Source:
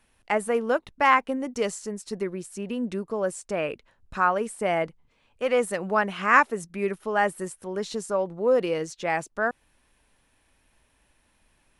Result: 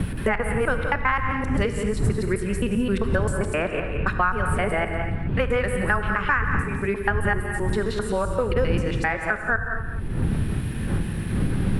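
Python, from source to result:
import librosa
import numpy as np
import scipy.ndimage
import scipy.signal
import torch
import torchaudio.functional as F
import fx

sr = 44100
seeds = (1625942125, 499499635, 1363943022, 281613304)

p1 = fx.local_reverse(x, sr, ms=131.0)
p2 = fx.dmg_wind(p1, sr, seeds[0], corner_hz=91.0, level_db=-28.0)
p3 = fx.rider(p2, sr, range_db=10, speed_s=2.0)
p4 = fx.graphic_eq_15(p3, sr, hz=(630, 1600, 6300), db=(-5, 8, -12))
p5 = p4 + fx.echo_single(p4, sr, ms=174, db=-12.5, dry=0)
p6 = fx.rev_gated(p5, sr, seeds[1], gate_ms=280, shape='flat', drr_db=7.0)
p7 = fx.band_squash(p6, sr, depth_pct=100)
y = p7 * librosa.db_to_amplitude(-1.5)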